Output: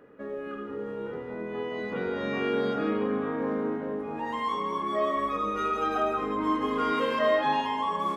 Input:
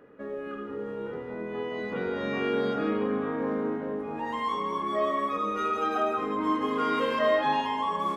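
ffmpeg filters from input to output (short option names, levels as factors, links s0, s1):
-filter_complex "[0:a]asettb=1/sr,asplit=3[s0][s1][s2];[s0]atrim=end=5.164[s3];[s1]atrim=start=5.16:end=6.91,asetpts=PTS-STARTPTS,afade=t=in:d=0.004:c=qsin,afade=t=out:st=1.746:d=0.004:c=qsin,aeval=exprs='val(0)+0.00282*(sin(2*PI*50*n/s)+sin(2*PI*2*50*n/s)/2+sin(2*PI*3*50*n/s)/3+sin(2*PI*4*50*n/s)/4+sin(2*PI*5*50*n/s)/5)':c=same[s4];[s2]atrim=start=6.906[s5];[s3][s4]acrossfade=d=0.004:c1=hsin:c2=qsin[s6];[s6][s5]acrossfade=d=0.004:c1=qsin:c2=hsin"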